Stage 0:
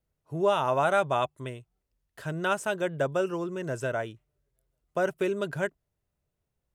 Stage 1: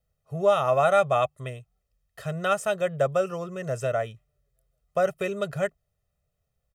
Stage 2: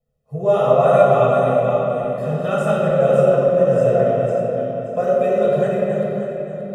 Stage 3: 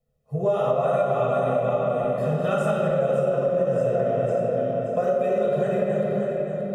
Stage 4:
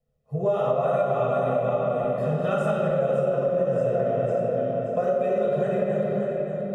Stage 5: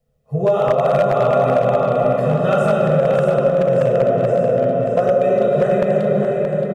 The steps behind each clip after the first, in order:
comb 1.6 ms, depth 87%
regenerating reverse delay 0.289 s, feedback 54%, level -5 dB; small resonant body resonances 250/450 Hz, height 15 dB, ringing for 25 ms; reverb RT60 3.0 s, pre-delay 6 ms, DRR -6.5 dB; gain -9.5 dB
compressor, threshold -19 dBFS, peak gain reduction 11.5 dB
high shelf 5400 Hz -6.5 dB; gain -1 dB
wavefolder -15.5 dBFS; echo 0.624 s -7 dB; gain +7.5 dB

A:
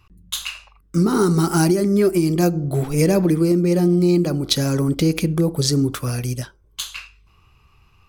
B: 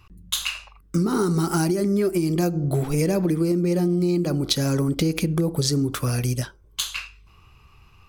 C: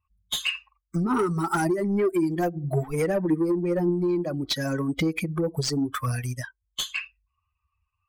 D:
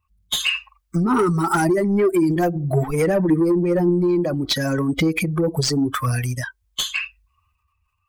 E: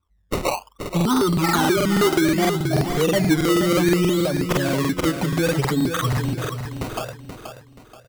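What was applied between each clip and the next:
compressor 4:1, threshold -22 dBFS, peak gain reduction 8.5 dB; gain +2.5 dB
per-bin expansion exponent 2; overdrive pedal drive 21 dB, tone 2800 Hz, clips at -7.5 dBFS; flange 1.8 Hz, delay 0 ms, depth 1.5 ms, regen +86%
transient shaper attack 0 dB, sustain +6 dB; gain +5.5 dB
decimation with a swept rate 18×, swing 100% 0.63 Hz; feedback echo 0.477 s, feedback 37%, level -8 dB; crackling interface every 0.16 s, samples 2048, repeat, from 0.8; gain -1 dB

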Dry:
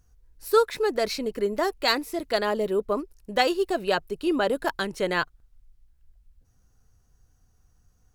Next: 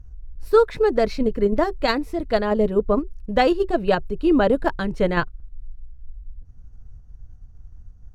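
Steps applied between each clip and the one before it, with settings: RIAA curve playback; notch 380 Hz, Q 12; in parallel at -3 dB: level quantiser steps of 22 dB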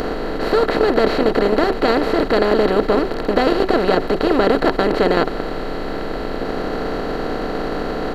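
per-bin compression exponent 0.2; gain -5 dB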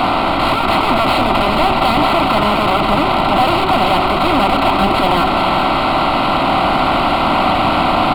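overdrive pedal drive 36 dB, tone 1800 Hz, clips at -1 dBFS; fixed phaser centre 1700 Hz, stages 6; echo 0.418 s -8 dB

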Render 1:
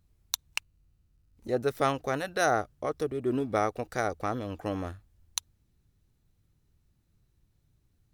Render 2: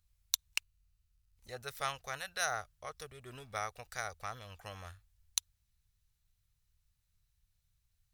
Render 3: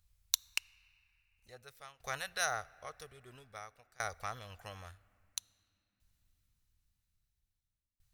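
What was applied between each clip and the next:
passive tone stack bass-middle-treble 10-0-10
tremolo saw down 0.5 Hz, depth 95%; on a send at -22 dB: reverb, pre-delay 3 ms; on the sum: gain +2.5 dB

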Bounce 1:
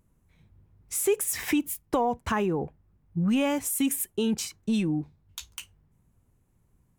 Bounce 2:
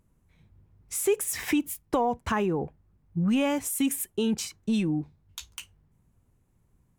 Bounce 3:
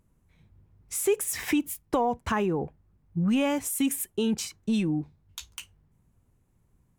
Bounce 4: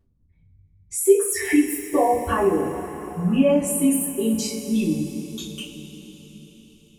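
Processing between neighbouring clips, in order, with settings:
high shelf 11000 Hz -4 dB
nothing audible
formant sharpening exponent 2; two-slope reverb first 0.34 s, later 4.9 s, from -18 dB, DRR -9.5 dB; gain -4 dB

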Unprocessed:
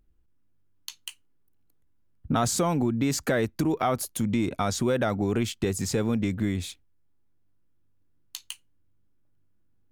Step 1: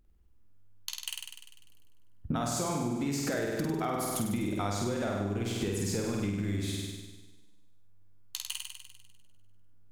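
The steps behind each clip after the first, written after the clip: on a send: flutter echo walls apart 8.5 m, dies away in 1.2 s; on the sum: compressor 12:1, threshold -28 dBFS, peak gain reduction 12 dB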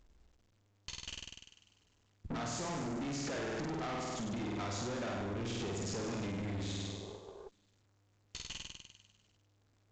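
spectral repair 6.47–7.46, 350–1200 Hz before; tube stage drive 40 dB, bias 0.7; gain +3.5 dB; A-law 128 kbps 16000 Hz

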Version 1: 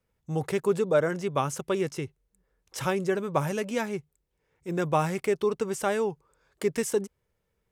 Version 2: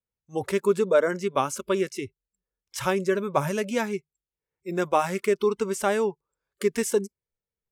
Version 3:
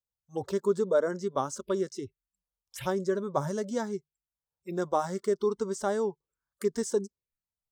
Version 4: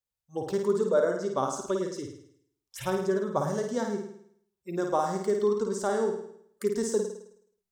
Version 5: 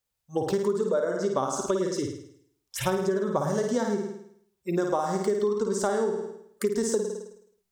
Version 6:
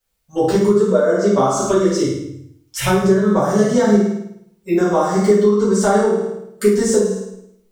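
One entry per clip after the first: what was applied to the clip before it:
spectral noise reduction 21 dB; gain +3 dB
envelope phaser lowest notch 330 Hz, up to 2500 Hz, full sweep at -26.5 dBFS; gain -4 dB
flutter echo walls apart 9.1 m, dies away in 0.66 s
compressor 10:1, threshold -30 dBFS, peak gain reduction 12 dB; gain +8 dB
shoebox room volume 53 m³, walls mixed, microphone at 2 m; gain +1 dB

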